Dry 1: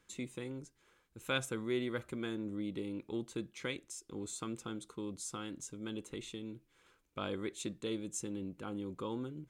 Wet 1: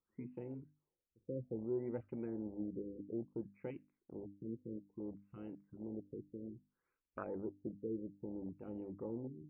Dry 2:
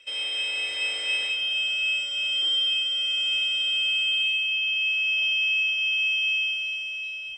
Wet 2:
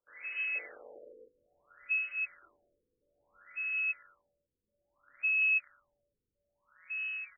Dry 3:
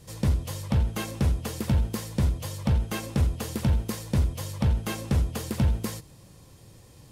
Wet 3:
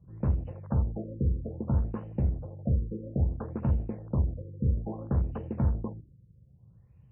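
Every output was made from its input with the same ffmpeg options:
ffmpeg -i in.wav -af "afwtdn=0.0141,bandreject=frequency=50:width_type=h:width=6,bandreject=frequency=100:width_type=h:width=6,bandreject=frequency=150:width_type=h:width=6,bandreject=frequency=200:width_type=h:width=6,bandreject=frequency=250:width_type=h:width=6,bandreject=frequency=300:width_type=h:width=6,afftfilt=real='re*lt(b*sr/1024,520*pow(3100/520,0.5+0.5*sin(2*PI*0.6*pts/sr)))':imag='im*lt(b*sr/1024,520*pow(3100/520,0.5+0.5*sin(2*PI*0.6*pts/sr)))':win_size=1024:overlap=0.75,volume=-2.5dB" out.wav

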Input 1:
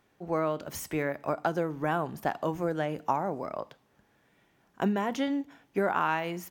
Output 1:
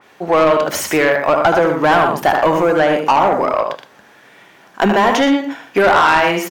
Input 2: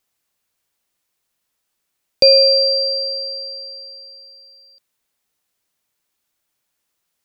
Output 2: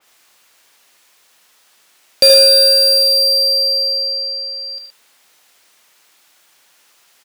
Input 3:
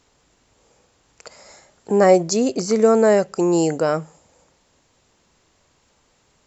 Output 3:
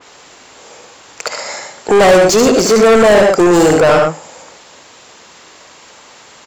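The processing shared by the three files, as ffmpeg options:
ffmpeg -i in.wav -filter_complex "[0:a]aecho=1:1:75.8|119.5:0.398|0.282,asplit=2[link_01][link_02];[link_02]highpass=frequency=720:poles=1,volume=30dB,asoftclip=type=tanh:threshold=-1dB[link_03];[link_01][link_03]amix=inputs=2:normalize=0,lowpass=frequency=5500:poles=1,volume=-6dB,adynamicequalizer=threshold=0.0447:dfrequency=3000:dqfactor=0.7:tfrequency=3000:tqfactor=0.7:attack=5:release=100:ratio=0.375:range=2:mode=cutabove:tftype=highshelf" out.wav

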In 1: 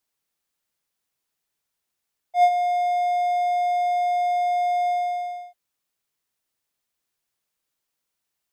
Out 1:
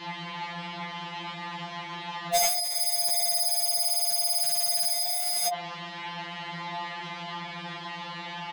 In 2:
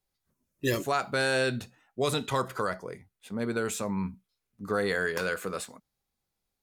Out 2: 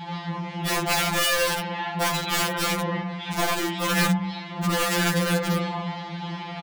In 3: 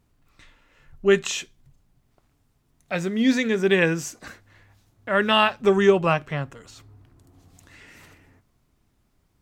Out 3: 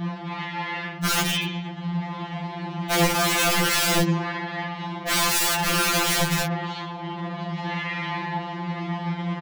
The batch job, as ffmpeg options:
ffmpeg -i in.wav -filter_complex "[0:a]aeval=exprs='val(0)+0.5*0.0473*sgn(val(0))':channel_layout=same,highpass=frequency=160:width=0.5412,highpass=frequency=160:width=1.3066,equalizer=frequency=180:width_type=q:width=4:gain=6,equalizer=frequency=280:width_type=q:width=4:gain=-8,equalizer=frequency=470:width_type=q:width=4:gain=-9,equalizer=frequency=870:width_type=q:width=4:gain=7,equalizer=frequency=1400:width_type=q:width=4:gain=-8,equalizer=frequency=2500:width_type=q:width=4:gain=-5,lowpass=frequency=3100:width=0.5412,lowpass=frequency=3100:width=1.3066,bandreject=frequency=50:width_type=h:width=6,bandreject=frequency=100:width_type=h:width=6,bandreject=frequency=150:width_type=h:width=6,bandreject=frequency=200:width_type=h:width=6,bandreject=frequency=250:width_type=h:width=6,bandreject=frequency=300:width_type=h:width=6,bandreject=frequency=350:width_type=h:width=6,bandreject=frequency=400:width_type=h:width=6,bandreject=frequency=450:width_type=h:width=6,bandreject=frequency=500:width_type=h:width=6,adynamicequalizer=threshold=0.01:dfrequency=590:dqfactor=6.8:tfrequency=590:tqfactor=6.8:attack=5:release=100:ratio=0.375:range=3:mode=cutabove:tftype=bell,asplit=2[link_01][link_02];[link_02]aecho=0:1:30|69|119.7|185.6|271.3:0.631|0.398|0.251|0.158|0.1[link_03];[link_01][link_03]amix=inputs=2:normalize=0,acontrast=53,aeval=exprs='(mod(5.31*val(0)+1,2)-1)/5.31':channel_layout=same,afftfilt=real='re*2.83*eq(mod(b,8),0)':imag='im*2.83*eq(mod(b,8),0)':win_size=2048:overlap=0.75" out.wav

